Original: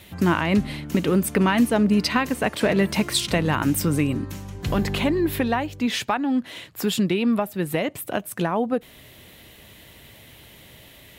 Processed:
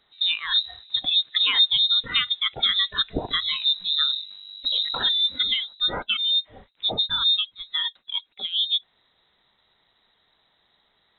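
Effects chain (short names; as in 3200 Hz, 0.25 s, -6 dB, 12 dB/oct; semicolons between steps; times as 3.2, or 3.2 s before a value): inverted band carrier 3900 Hz; spectral noise reduction 18 dB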